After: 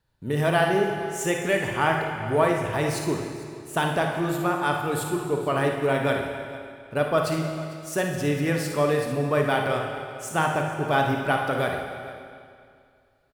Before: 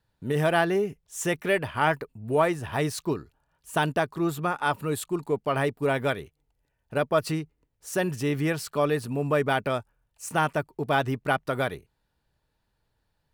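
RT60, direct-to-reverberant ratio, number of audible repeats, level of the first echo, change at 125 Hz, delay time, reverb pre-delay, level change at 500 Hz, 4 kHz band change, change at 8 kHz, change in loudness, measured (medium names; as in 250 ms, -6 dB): 2.3 s, 1.0 dB, 2, -9.5 dB, +2.5 dB, 55 ms, 33 ms, +2.5 dB, +2.5 dB, +2.0 dB, +2.0 dB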